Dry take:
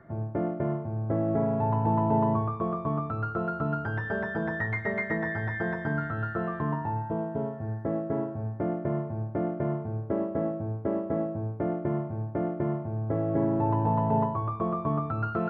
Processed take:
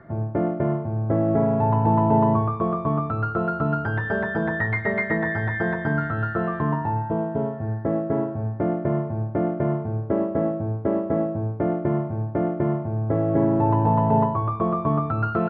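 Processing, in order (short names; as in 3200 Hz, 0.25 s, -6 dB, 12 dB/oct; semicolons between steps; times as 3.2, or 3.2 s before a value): downsampling 11025 Hz; gain +6 dB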